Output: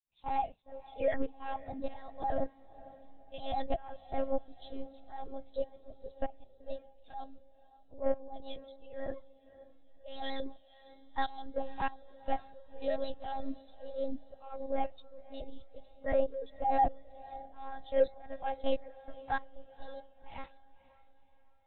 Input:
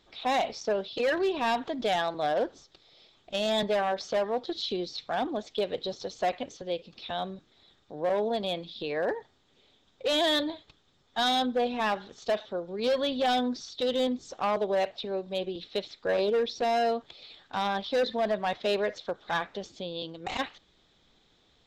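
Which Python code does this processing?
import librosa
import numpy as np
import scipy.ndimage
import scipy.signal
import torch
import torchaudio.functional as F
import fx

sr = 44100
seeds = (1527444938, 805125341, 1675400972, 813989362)

p1 = fx.pitch_trill(x, sr, semitones=2.5, every_ms=72)
p2 = fx.tremolo_shape(p1, sr, shape='saw_up', hz=1.6, depth_pct=90)
p3 = fx.lpc_monotone(p2, sr, seeds[0], pitch_hz=270.0, order=8)
p4 = p3 + fx.echo_diffused(p3, sr, ms=522, feedback_pct=57, wet_db=-12.0, dry=0)
y = fx.spectral_expand(p4, sr, expansion=1.5)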